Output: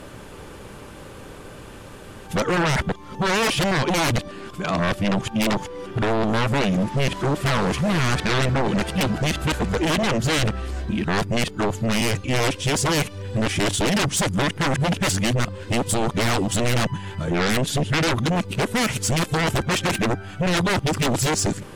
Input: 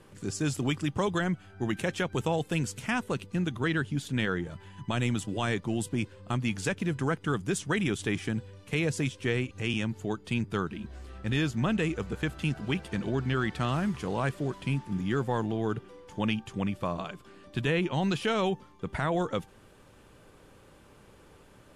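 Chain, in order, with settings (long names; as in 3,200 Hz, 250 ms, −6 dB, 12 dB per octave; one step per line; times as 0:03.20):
played backwards from end to start
sine wavefolder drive 12 dB, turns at −17 dBFS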